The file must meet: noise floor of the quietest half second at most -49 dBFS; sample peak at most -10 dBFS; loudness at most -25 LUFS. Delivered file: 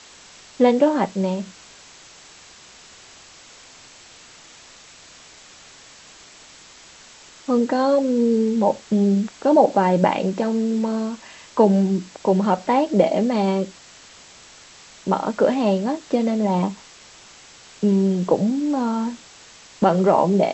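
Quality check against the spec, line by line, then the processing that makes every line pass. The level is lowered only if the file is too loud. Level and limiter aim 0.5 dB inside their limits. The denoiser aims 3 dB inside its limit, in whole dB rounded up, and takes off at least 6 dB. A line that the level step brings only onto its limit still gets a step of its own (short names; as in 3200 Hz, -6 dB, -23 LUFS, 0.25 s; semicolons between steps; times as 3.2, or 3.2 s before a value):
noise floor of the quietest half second -46 dBFS: fail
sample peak -3.5 dBFS: fail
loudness -20.0 LUFS: fail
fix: gain -5.5 dB; limiter -10.5 dBFS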